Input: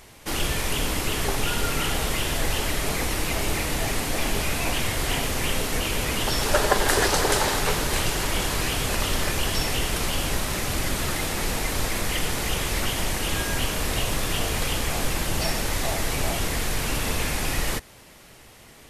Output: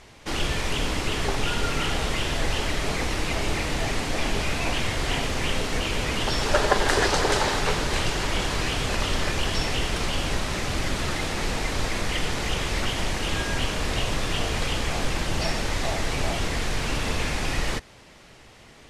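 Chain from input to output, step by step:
low-pass filter 6,300 Hz 12 dB per octave

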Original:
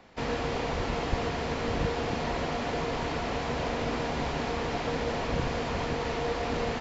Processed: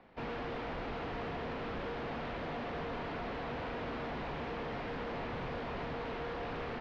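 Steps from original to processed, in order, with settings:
parametric band 74 Hz −5 dB 1.2 octaves
wave folding −29.5 dBFS
high-frequency loss of the air 320 metres
level −3.5 dB

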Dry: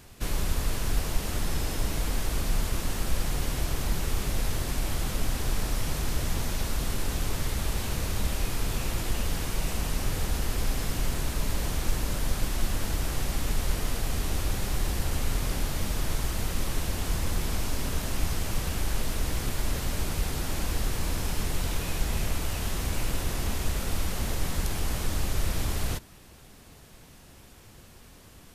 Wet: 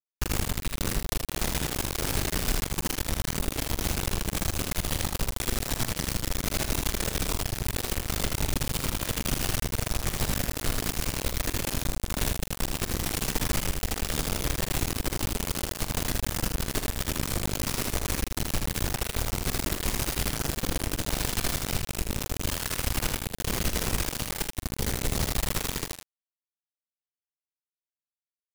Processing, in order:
downward compressor 12 to 1, threshold −29 dBFS, peak gain reduction 12.5 dB
rotating-speaker cabinet horn 7.5 Hz, later 0.75 Hz, at 0:18.86
spring reverb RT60 1 s, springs 47 ms, chirp 65 ms, DRR 17.5 dB
bit reduction 5 bits
on a send: ambience of single reflections 44 ms −11 dB, 79 ms −4 dB
on the sum: level +3.5 dB

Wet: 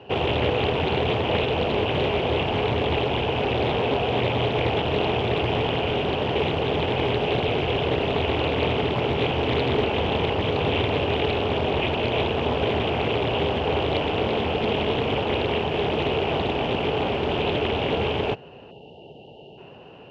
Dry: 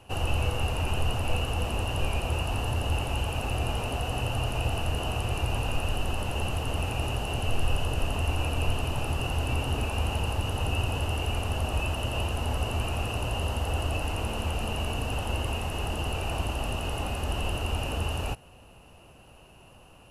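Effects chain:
loudspeaker in its box 150–3,600 Hz, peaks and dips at 150 Hz +4 dB, 420 Hz +10 dB, 1,200 Hz −8 dB, 2,300 Hz −4 dB
time-frequency box erased 0:18.71–0:19.58, 930–2,700 Hz
highs frequency-modulated by the lows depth 0.6 ms
level +9 dB

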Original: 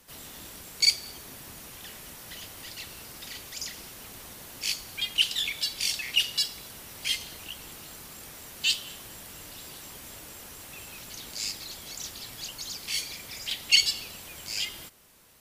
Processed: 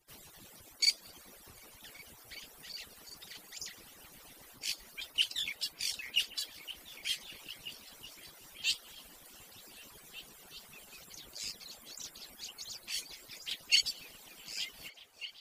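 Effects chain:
harmonic-percussive split with one part muted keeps percussive
echo through a band-pass that steps 374 ms, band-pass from 590 Hz, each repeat 0.7 octaves, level −5.5 dB
level −6.5 dB

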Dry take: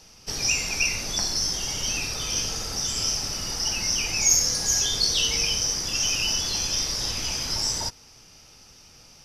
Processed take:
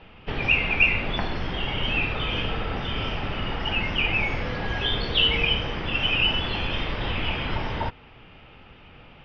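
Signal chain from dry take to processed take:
Butterworth low-pass 3,200 Hz 48 dB per octave
level +7.5 dB

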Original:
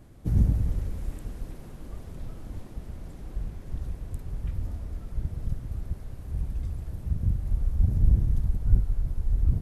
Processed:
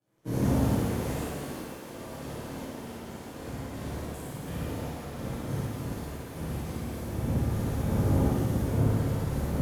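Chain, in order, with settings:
flutter between parallel walls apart 9.6 metres, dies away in 1.1 s
power curve on the samples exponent 1.4
high-pass filter 230 Hz 12 dB per octave
leveller curve on the samples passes 3
reverb with rising layers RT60 1.4 s, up +7 semitones, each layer −8 dB, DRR −11.5 dB
level −7 dB

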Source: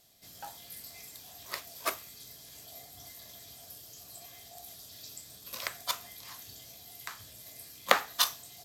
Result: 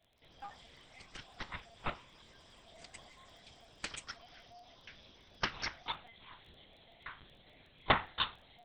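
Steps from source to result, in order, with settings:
linear-prediction vocoder at 8 kHz pitch kept
surface crackle 13 per second −52 dBFS
delay with pitch and tempo change per echo 161 ms, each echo +7 semitones, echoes 2, each echo −6 dB
level −3.5 dB

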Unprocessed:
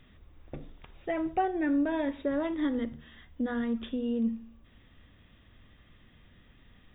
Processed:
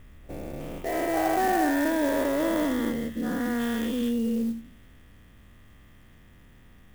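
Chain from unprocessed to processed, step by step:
every bin's largest magnitude spread in time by 480 ms
low-pass that shuts in the quiet parts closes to 2,800 Hz
converter with an unsteady clock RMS 0.034 ms
level −1.5 dB

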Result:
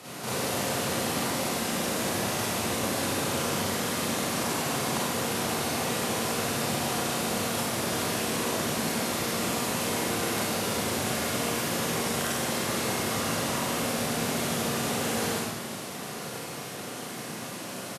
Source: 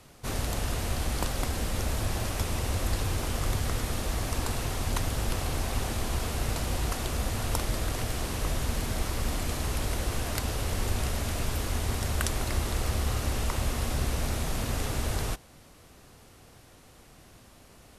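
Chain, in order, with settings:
high-pass filter 140 Hz 24 dB per octave
downward compressor 5 to 1, threshold −46 dBFS, peak gain reduction 18 dB
single-tap delay 1,043 ms −20.5 dB
four-comb reverb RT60 1.6 s, combs from 32 ms, DRR −9.5 dB
level +8.5 dB

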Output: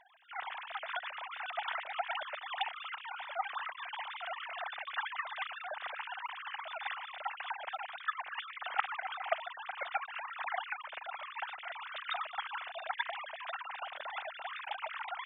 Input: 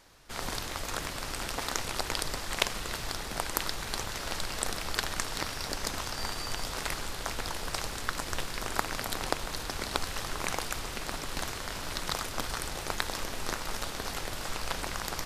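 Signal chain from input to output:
three sine waves on the formant tracks
level −6.5 dB

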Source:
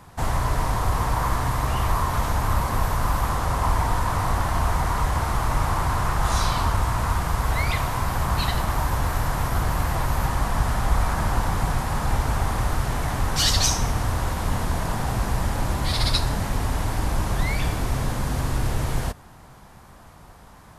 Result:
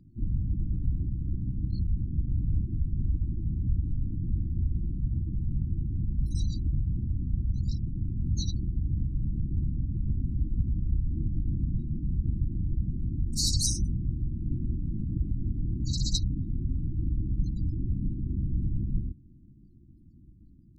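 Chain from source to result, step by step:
gate on every frequency bin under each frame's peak −20 dB strong
pitch-shifted copies added +7 semitones −4 dB
linear-phase brick-wall band-stop 360–3,800 Hz
level −6 dB

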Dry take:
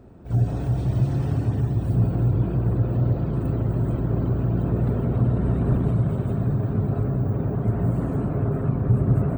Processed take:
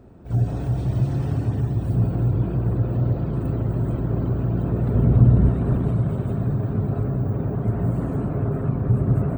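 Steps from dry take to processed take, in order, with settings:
0:04.94–0:05.49: low-shelf EQ 210 Hz +9.5 dB

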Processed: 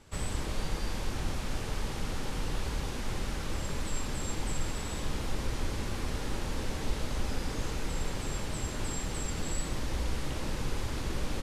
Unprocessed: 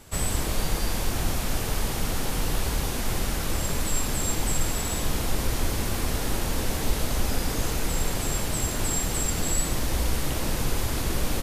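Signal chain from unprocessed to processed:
high-frequency loss of the air 57 metres
notch filter 690 Hz, Q 12
level −6.5 dB

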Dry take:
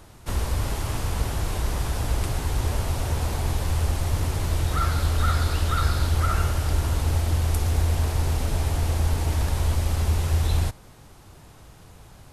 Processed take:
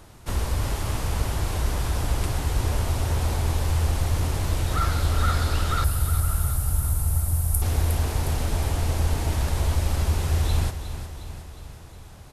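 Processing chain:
0:05.84–0:07.62: drawn EQ curve 120 Hz 0 dB, 390 Hz −15 dB, 760 Hz −8 dB, 3,100 Hz −16 dB, 6,400 Hz −6 dB, 9,800 Hz +10 dB
repeating echo 360 ms, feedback 58%, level −10.5 dB

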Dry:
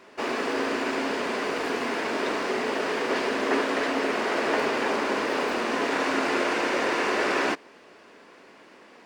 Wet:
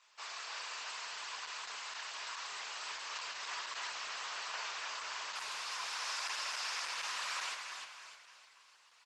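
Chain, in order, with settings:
loose part that buzzes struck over −33 dBFS, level −30 dBFS
0:05.61–0:06.90: dynamic equaliser 5,200 Hz, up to +6 dB, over −59 dBFS, Q 6.4
high-pass filter 1,200 Hz 24 dB per octave
parametric band 1,800 Hz −14.5 dB 1.6 octaves
0:02.38–0:02.93: double-tracking delay 29 ms −10 dB
repeating echo 303 ms, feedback 43%, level −6.5 dB
convolution reverb RT60 1.1 s, pre-delay 61 ms, DRR 8 dB
level −1 dB
Opus 12 kbit/s 48,000 Hz

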